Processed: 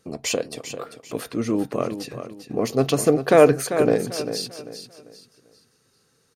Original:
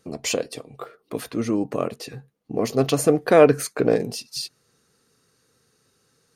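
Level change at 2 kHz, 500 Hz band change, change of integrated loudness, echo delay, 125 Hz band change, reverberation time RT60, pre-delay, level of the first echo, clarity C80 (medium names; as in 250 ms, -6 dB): +0.5 dB, +0.5 dB, -0.5 dB, 394 ms, +0.5 dB, no reverb, no reverb, -10.0 dB, no reverb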